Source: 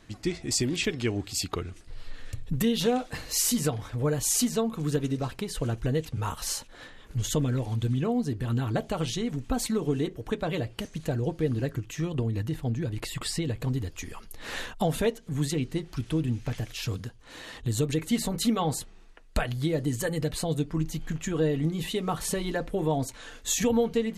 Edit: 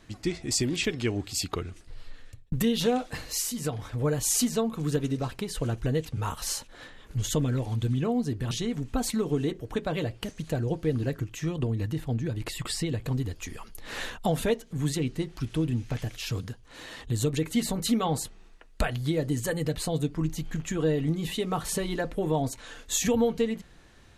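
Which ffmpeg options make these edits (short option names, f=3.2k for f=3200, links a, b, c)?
-filter_complex "[0:a]asplit=4[a][b][c][d];[a]atrim=end=2.52,asetpts=PTS-STARTPTS,afade=t=out:st=1.55:d=0.97:c=qsin[e];[b]atrim=start=2.52:end=3.53,asetpts=PTS-STARTPTS,afade=t=in:d=0.004:c=hsin,afade=t=out:st=0.7:d=0.31:silence=0.375837[f];[c]atrim=start=3.53:end=8.512,asetpts=PTS-STARTPTS,afade=t=in:d=0.31:silence=0.375837[g];[d]atrim=start=9.068[h];[e][f][g]concat=n=3:v=0:a=1[i];[i][h]acrossfade=d=0.004:c1=hsin:c2=hsin"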